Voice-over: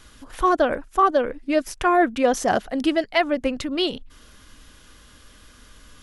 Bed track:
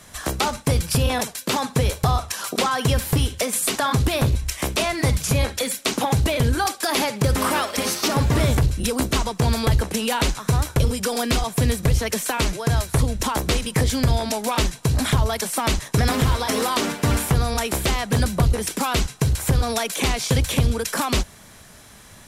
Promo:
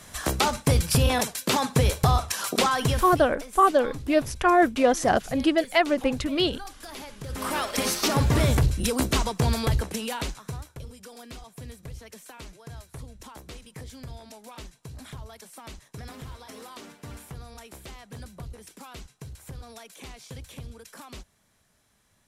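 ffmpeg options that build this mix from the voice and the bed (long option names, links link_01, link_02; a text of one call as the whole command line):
ffmpeg -i stem1.wav -i stem2.wav -filter_complex "[0:a]adelay=2600,volume=-1dB[link_01];[1:a]volume=15.5dB,afade=type=out:start_time=2.67:duration=0.59:silence=0.125893,afade=type=in:start_time=7.26:duration=0.52:silence=0.149624,afade=type=out:start_time=9.28:duration=1.42:silence=0.112202[link_02];[link_01][link_02]amix=inputs=2:normalize=0" out.wav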